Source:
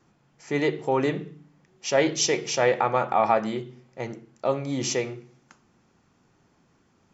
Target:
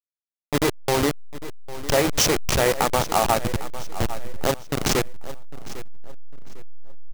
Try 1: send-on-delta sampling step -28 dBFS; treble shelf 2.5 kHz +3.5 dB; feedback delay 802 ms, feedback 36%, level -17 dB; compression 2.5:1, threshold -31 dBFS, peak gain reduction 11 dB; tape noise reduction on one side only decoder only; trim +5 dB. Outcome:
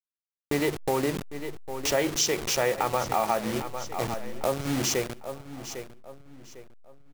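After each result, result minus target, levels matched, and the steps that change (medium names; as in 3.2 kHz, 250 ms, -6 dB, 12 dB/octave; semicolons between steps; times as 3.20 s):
send-on-delta sampling: distortion -12 dB; compression: peak gain reduction +6 dB
change: send-on-delta sampling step -18.5 dBFS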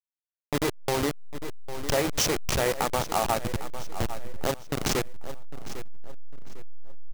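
compression: peak gain reduction +5.5 dB
change: compression 2.5:1, threshold -21.5 dBFS, peak gain reduction 5 dB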